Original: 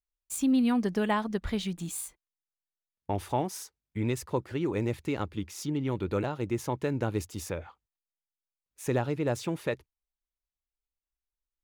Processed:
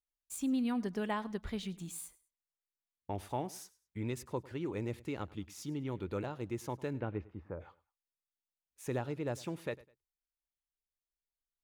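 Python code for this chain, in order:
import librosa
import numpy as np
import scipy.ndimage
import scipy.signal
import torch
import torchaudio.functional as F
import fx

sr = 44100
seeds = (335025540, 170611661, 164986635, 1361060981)

y = fx.lowpass(x, sr, hz=fx.line((6.97, 3300.0), (7.59, 1300.0)), slope=24, at=(6.97, 7.59), fade=0.02)
y = fx.echo_feedback(y, sr, ms=102, feedback_pct=28, wet_db=-21)
y = F.gain(torch.from_numpy(y), -8.0).numpy()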